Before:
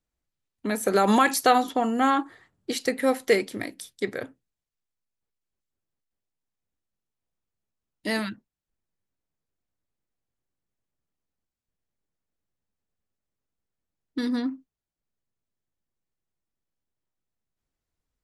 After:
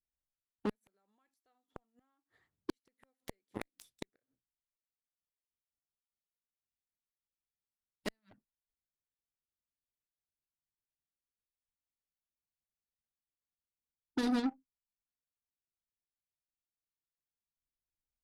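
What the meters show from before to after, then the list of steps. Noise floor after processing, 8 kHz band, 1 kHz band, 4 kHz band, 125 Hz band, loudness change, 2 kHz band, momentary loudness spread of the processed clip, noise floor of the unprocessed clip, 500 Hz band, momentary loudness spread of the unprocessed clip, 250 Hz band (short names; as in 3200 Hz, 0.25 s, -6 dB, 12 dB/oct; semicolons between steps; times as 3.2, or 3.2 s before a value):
under -85 dBFS, -23.5 dB, -25.0 dB, -17.0 dB, -15.0 dB, -14.5 dB, -21.0 dB, 23 LU, under -85 dBFS, -20.5 dB, 17 LU, -12.5 dB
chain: flipped gate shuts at -19 dBFS, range -41 dB; low shelf 77 Hz +7 dB; added harmonics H 7 -15 dB, 8 -43 dB, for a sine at -17.5 dBFS; gain -6 dB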